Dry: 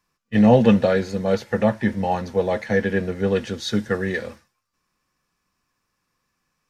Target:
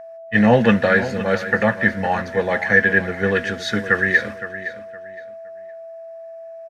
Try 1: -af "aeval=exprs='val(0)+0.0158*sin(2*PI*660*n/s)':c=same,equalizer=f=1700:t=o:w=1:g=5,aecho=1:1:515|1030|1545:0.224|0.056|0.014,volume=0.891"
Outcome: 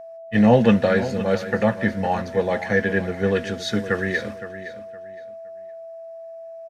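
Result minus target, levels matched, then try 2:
2 kHz band -6.5 dB
-af "aeval=exprs='val(0)+0.0158*sin(2*PI*660*n/s)':c=same,equalizer=f=1700:t=o:w=1:g=15,aecho=1:1:515|1030|1545:0.224|0.056|0.014,volume=0.891"

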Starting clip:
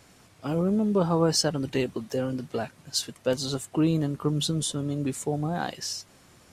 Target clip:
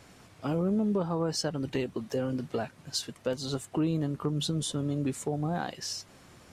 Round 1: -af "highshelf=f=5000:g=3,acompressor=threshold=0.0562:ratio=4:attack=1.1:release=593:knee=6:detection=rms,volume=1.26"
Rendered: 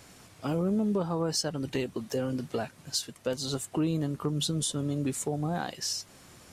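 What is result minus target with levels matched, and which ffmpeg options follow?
8 kHz band +4.0 dB
-af "highshelf=f=5000:g=-5.5,acompressor=threshold=0.0562:ratio=4:attack=1.1:release=593:knee=6:detection=rms,volume=1.26"

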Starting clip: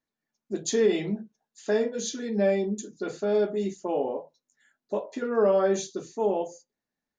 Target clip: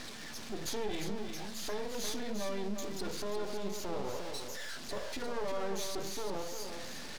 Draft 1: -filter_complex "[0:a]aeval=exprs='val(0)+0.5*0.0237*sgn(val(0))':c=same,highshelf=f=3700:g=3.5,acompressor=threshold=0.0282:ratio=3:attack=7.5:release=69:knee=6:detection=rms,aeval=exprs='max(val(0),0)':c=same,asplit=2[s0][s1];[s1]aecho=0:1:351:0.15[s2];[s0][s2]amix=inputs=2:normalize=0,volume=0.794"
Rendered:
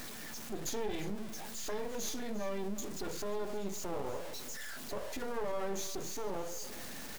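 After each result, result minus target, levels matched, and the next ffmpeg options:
echo-to-direct -9.5 dB; 4 kHz band -3.5 dB
-filter_complex "[0:a]aeval=exprs='val(0)+0.5*0.0237*sgn(val(0))':c=same,highshelf=f=3700:g=3.5,acompressor=threshold=0.0282:ratio=3:attack=7.5:release=69:knee=6:detection=rms,aeval=exprs='max(val(0),0)':c=same,asplit=2[s0][s1];[s1]aecho=0:1:351:0.447[s2];[s0][s2]amix=inputs=2:normalize=0,volume=0.794"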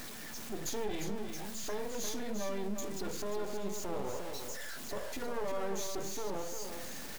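4 kHz band -3.5 dB
-filter_complex "[0:a]aeval=exprs='val(0)+0.5*0.0237*sgn(val(0))':c=same,highshelf=f=3700:g=3.5,acompressor=threshold=0.0282:ratio=3:attack=7.5:release=69:knee=6:detection=rms,lowpass=f=4800:t=q:w=1.5,aeval=exprs='max(val(0),0)':c=same,asplit=2[s0][s1];[s1]aecho=0:1:351:0.447[s2];[s0][s2]amix=inputs=2:normalize=0,volume=0.794"

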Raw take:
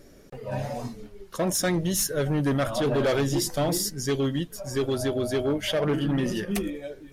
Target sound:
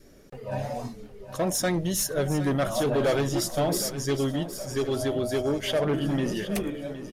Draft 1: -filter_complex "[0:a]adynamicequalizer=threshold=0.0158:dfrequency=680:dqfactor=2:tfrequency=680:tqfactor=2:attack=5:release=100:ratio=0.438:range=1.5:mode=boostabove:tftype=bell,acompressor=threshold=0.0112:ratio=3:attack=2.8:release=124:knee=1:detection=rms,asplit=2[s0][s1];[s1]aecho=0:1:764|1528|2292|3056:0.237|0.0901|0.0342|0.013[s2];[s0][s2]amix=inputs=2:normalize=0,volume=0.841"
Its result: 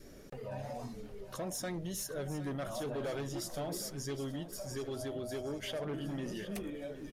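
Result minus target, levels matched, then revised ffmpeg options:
compression: peak gain reduction +15 dB
-filter_complex "[0:a]adynamicequalizer=threshold=0.0158:dfrequency=680:dqfactor=2:tfrequency=680:tqfactor=2:attack=5:release=100:ratio=0.438:range=1.5:mode=boostabove:tftype=bell,asplit=2[s0][s1];[s1]aecho=0:1:764|1528|2292|3056:0.237|0.0901|0.0342|0.013[s2];[s0][s2]amix=inputs=2:normalize=0,volume=0.841"

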